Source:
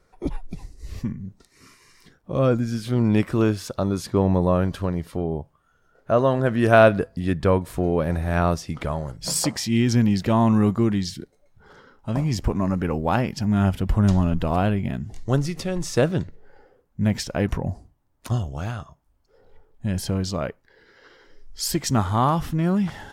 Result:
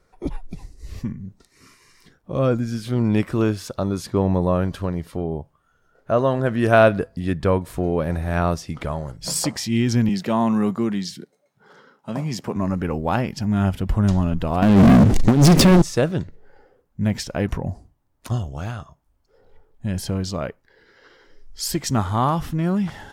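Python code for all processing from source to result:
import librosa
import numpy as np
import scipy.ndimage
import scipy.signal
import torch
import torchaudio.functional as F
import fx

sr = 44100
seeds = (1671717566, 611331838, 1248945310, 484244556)

y = fx.chain(x, sr, fx.highpass(hz=150.0, slope=24),
    fx.peak_eq(hz=310.0, db=-4.0, octaves=0.32), at=(10.09, 12.56))
y = fx.chain(y, sr, fx.over_compress(threshold_db=-26.0, ratio=-0.5),
    fx.peak_eq(hz=260.0, db=11.0, octaves=1.2),
    fx.leveller(passes=5), at=(14.62, 15.82))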